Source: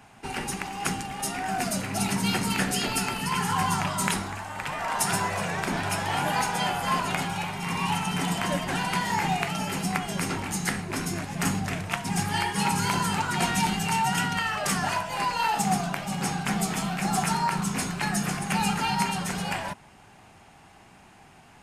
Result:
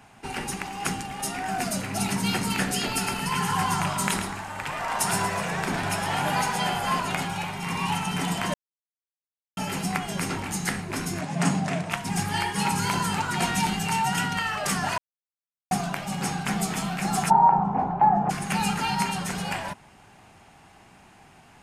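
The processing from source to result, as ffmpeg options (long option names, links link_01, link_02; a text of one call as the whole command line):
ffmpeg -i in.wav -filter_complex "[0:a]asettb=1/sr,asplit=3[link_01][link_02][link_03];[link_01]atrim=end=2.904[link_04];[link_02]atrim=start=2.9:end=6.92,asetpts=PTS-STARTPTS,afade=type=in:duration=0.004:curve=qsin,afade=type=out:start_time=4.016:duration=0.004:curve=qsin,aecho=1:1:109:0.422,atrim=end_sample=177282[link_05];[link_03]atrim=start=6.916[link_06];[link_04][link_05]acrossfade=duration=0.004:curve1=hsin:curve2=qsin[link_07];[link_07][link_06]acrossfade=duration=0.004:curve1=qsin:curve2=hsin,asettb=1/sr,asplit=3[link_08][link_09][link_10];[link_08]atrim=end=11.214[link_11];[link_09]atrim=start=11.21:end=11.9,asetpts=PTS-STARTPTS,afade=type=in:duration=0.004:curve=qsin,afade=type=out:start_time=0.686:duration=0.004:curve=qsin,highpass=frequency=130:width=0.5412,highpass=frequency=130:width=1.3066,equalizer=frequency=160:width_type=q:width=4:gain=9,equalizer=frequency=280:width_type=q:width=4:gain=3,equalizer=frequency=650:width_type=q:width=4:gain=9,equalizer=frequency=980:width_type=q:width=4:gain=3,lowpass=frequency=9800:width=0.5412,lowpass=frequency=9800:width=1.3066[link_12];[link_10]atrim=start=11.896[link_13];[link_11][link_12]acrossfade=duration=0.004:curve1=hsin:curve2=qsin[link_14];[link_14][link_13]acrossfade=duration=0.004:curve1=qsin:curve2=hsin,asplit=3[link_15][link_16][link_17];[link_15]afade=type=out:start_time=17.29:duration=0.02[link_18];[link_16]lowpass=frequency=820:width_type=q:width=8.5,afade=type=in:start_time=17.29:duration=0.02,afade=type=out:start_time=18.29:duration=0.02[link_19];[link_17]afade=type=in:start_time=18.29:duration=0.02[link_20];[link_18][link_19][link_20]amix=inputs=3:normalize=0,asplit=5[link_21][link_22][link_23][link_24][link_25];[link_21]atrim=end=8.54,asetpts=PTS-STARTPTS,afade=type=out:start_time=8.536:duration=0.004:curve=hsin[link_26];[link_22]atrim=start=8.54:end=9.57,asetpts=PTS-STARTPTS,volume=0[link_27];[link_23]atrim=start=9.57:end=14.98,asetpts=PTS-STARTPTS,afade=type=in:duration=0.004:curve=hsin,afade=type=out:start_time=5.406:duration=0.004:curve=hsin[link_28];[link_24]atrim=start=14.98:end=15.71,asetpts=PTS-STARTPTS,volume=0[link_29];[link_25]atrim=start=15.71,asetpts=PTS-STARTPTS,afade=type=in:duration=0.004:curve=hsin[link_30];[link_26][link_27][link_28][link_29][link_30]concat=n=5:v=0:a=1" out.wav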